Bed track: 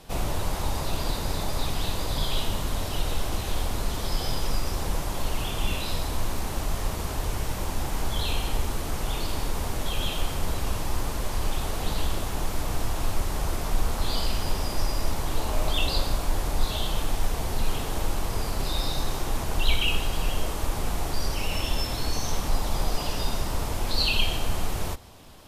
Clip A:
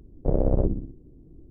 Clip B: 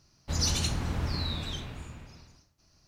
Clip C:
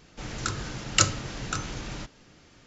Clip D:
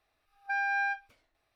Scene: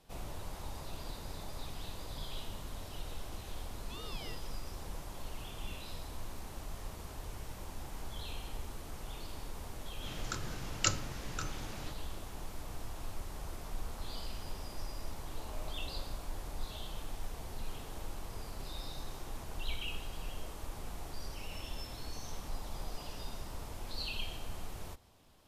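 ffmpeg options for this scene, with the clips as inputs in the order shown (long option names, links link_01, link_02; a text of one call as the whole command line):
ffmpeg -i bed.wav -i cue0.wav -i cue1.wav -i cue2.wav -i cue3.wav -filter_complex "[0:a]volume=-15.5dB[link_01];[4:a]aeval=exprs='val(0)*sin(2*PI*1600*n/s+1600*0.3/1.6*sin(2*PI*1.6*n/s))':channel_layout=same,atrim=end=1.55,asetpts=PTS-STARTPTS,volume=-15.5dB,afade=type=in:duration=0.004:curve=hsin,afade=type=out:start_time=1.546:duration=0.004:curve=hsin,adelay=150381S[link_02];[3:a]atrim=end=2.66,asetpts=PTS-STARTPTS,volume=-9.5dB,afade=type=in:duration=0.004:curve=hsin,afade=type=out:start_time=2.656:duration=0.004:curve=hsin,adelay=434826S[link_03];[link_01][link_02][link_03]amix=inputs=3:normalize=0" out.wav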